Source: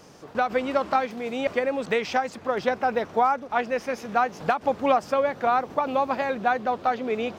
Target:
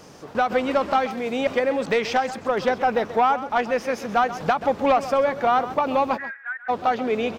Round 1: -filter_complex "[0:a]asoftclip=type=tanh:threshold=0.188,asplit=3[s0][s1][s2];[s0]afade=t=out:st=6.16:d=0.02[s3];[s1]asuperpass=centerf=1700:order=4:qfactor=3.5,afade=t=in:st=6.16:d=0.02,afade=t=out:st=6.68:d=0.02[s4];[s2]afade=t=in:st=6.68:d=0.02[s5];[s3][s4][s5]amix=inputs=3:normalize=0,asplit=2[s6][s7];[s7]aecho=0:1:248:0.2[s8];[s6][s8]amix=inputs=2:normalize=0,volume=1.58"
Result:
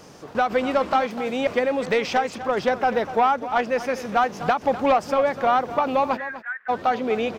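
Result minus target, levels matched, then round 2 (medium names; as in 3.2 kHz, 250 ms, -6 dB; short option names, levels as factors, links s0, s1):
echo 115 ms late
-filter_complex "[0:a]asoftclip=type=tanh:threshold=0.188,asplit=3[s0][s1][s2];[s0]afade=t=out:st=6.16:d=0.02[s3];[s1]asuperpass=centerf=1700:order=4:qfactor=3.5,afade=t=in:st=6.16:d=0.02,afade=t=out:st=6.68:d=0.02[s4];[s2]afade=t=in:st=6.68:d=0.02[s5];[s3][s4][s5]amix=inputs=3:normalize=0,asplit=2[s6][s7];[s7]aecho=0:1:133:0.2[s8];[s6][s8]amix=inputs=2:normalize=0,volume=1.58"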